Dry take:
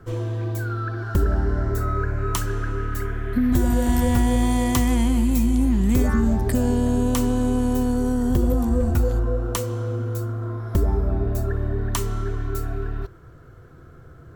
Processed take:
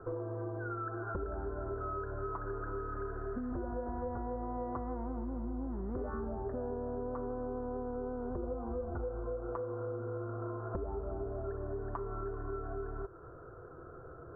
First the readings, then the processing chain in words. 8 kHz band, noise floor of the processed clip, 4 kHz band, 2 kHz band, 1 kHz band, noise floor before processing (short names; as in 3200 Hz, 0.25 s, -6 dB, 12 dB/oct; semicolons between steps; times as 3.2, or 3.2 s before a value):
under -40 dB, -51 dBFS, under -40 dB, -15.5 dB, -10.0 dB, -46 dBFS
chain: elliptic low-pass 1400 Hz, stop band 50 dB; resonant low shelf 300 Hz -8.5 dB, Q 1.5; compressor, threshold -37 dBFS, peak gain reduction 15.5 dB; gain +1 dB